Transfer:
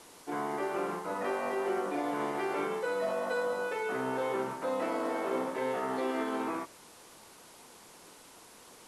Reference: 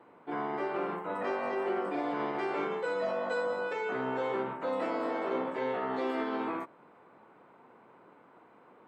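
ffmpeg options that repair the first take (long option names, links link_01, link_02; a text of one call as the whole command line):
ffmpeg -i in.wav -af "afwtdn=0.002" out.wav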